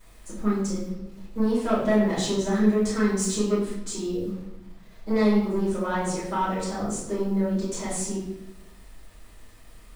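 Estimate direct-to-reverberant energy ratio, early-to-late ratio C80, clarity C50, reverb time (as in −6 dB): −11.0 dB, 6.0 dB, 2.5 dB, 0.95 s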